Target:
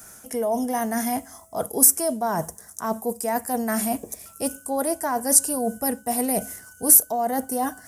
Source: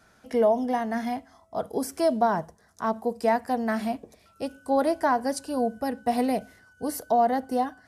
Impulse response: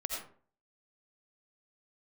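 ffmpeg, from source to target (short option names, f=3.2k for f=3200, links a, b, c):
-af "areverse,acompressor=threshold=-30dB:ratio=6,areverse,aexciter=amount=11.3:drive=4:freq=6.2k,alimiter=level_in=8.5dB:limit=-1dB:release=50:level=0:latency=1,volume=-1dB"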